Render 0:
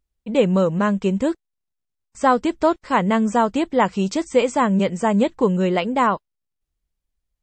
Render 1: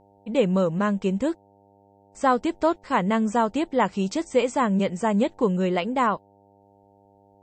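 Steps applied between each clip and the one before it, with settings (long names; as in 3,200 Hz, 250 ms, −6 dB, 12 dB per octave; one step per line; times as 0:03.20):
hum with harmonics 100 Hz, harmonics 9, −53 dBFS 0 dB per octave
level −4 dB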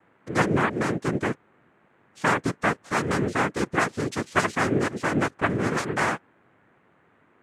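cochlear-implant simulation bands 3
level −2 dB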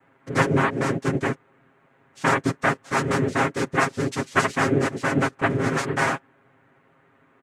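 comb filter 7.4 ms, depth 75%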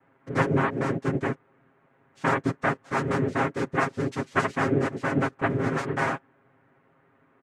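high-shelf EQ 3,200 Hz −10.5 dB
level −2.5 dB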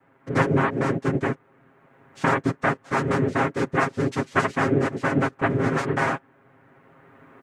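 camcorder AGC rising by 7.7 dB per second
level +2.5 dB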